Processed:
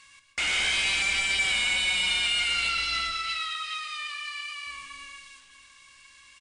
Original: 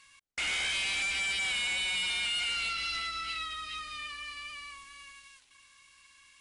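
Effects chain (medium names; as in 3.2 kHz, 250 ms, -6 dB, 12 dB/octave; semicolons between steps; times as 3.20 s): 3.12–4.67 s: high-pass 1 kHz 12 dB/octave; speakerphone echo 350 ms, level -15 dB; reverberation RT60 0.75 s, pre-delay 117 ms, DRR 6 dB; trim +5.5 dB; MP3 160 kbps 22.05 kHz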